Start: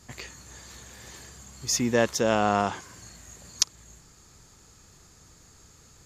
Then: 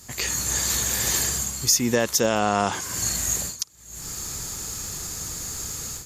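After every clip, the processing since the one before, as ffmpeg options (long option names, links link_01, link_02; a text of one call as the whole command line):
ffmpeg -i in.wav -af "aemphasis=mode=production:type=50fm,dynaudnorm=framelen=170:gausssize=3:maxgain=14.5dB,alimiter=limit=-10.5dB:level=0:latency=1:release=283,volume=2.5dB" out.wav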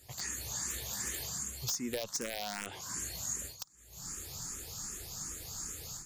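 ffmpeg -i in.wav -filter_complex "[0:a]acompressor=threshold=-27dB:ratio=2.5,aeval=exprs='(mod(6.68*val(0)+1,2)-1)/6.68':channel_layout=same,asplit=2[link_01][link_02];[link_02]afreqshift=2.6[link_03];[link_01][link_03]amix=inputs=2:normalize=1,volume=-7dB" out.wav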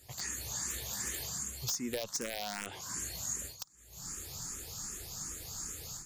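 ffmpeg -i in.wav -af anull out.wav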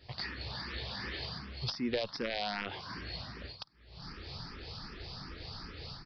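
ffmpeg -i in.wav -af "aresample=11025,aresample=44100,volume=4dB" out.wav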